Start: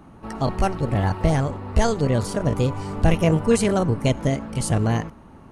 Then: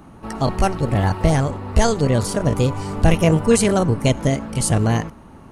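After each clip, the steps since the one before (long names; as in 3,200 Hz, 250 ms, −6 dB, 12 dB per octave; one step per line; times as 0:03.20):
high-shelf EQ 5,100 Hz +5.5 dB
level +3 dB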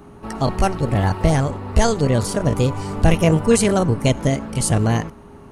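steady tone 410 Hz −46 dBFS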